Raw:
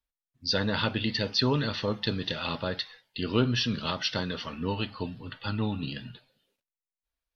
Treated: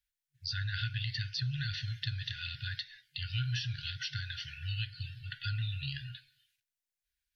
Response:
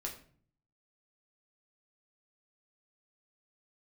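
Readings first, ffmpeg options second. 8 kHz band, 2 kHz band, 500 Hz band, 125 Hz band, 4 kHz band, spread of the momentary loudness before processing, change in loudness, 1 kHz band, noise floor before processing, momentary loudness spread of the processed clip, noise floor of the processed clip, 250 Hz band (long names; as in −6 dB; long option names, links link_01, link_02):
can't be measured, −5.0 dB, below −40 dB, −2.5 dB, −7.0 dB, 11 LU, −7.5 dB, −17.0 dB, below −85 dBFS, 7 LU, below −85 dBFS, below −20 dB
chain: -filter_complex "[0:a]afftfilt=real='re*(1-between(b*sr/4096,150,1400))':imag='im*(1-between(b*sr/4096,150,1400))':win_size=4096:overlap=0.75,lowshelf=frequency=67:gain=-7.5,acrossover=split=920|4900[link_01][link_02][link_03];[link_01]acompressor=threshold=-35dB:ratio=4[link_04];[link_02]acompressor=threshold=-44dB:ratio=4[link_05];[link_03]acompressor=threshold=-52dB:ratio=4[link_06];[link_04][link_05][link_06]amix=inputs=3:normalize=0,volume=3dB"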